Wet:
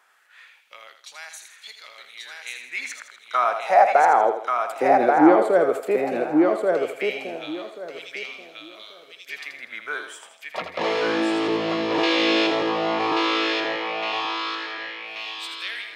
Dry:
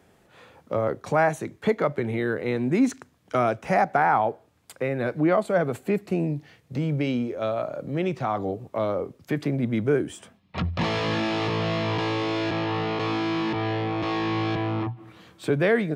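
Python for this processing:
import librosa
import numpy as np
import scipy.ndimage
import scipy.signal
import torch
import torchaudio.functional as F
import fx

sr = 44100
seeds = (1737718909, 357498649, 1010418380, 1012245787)

y = fx.weighting(x, sr, curve='D', at=(12.03, 12.47))
y = fx.echo_thinned(y, sr, ms=81, feedback_pct=45, hz=390.0, wet_db=-7.5)
y = fx.filter_lfo_highpass(y, sr, shape='sine', hz=0.15, low_hz=310.0, high_hz=4200.0, q=2.5)
y = fx.echo_feedback(y, sr, ms=1134, feedback_pct=19, wet_db=-3)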